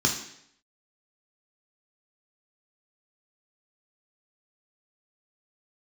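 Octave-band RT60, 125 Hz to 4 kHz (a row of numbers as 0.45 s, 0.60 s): 0.70 s, 0.70 s, 0.70 s, 0.70 s, 0.70 s, 0.70 s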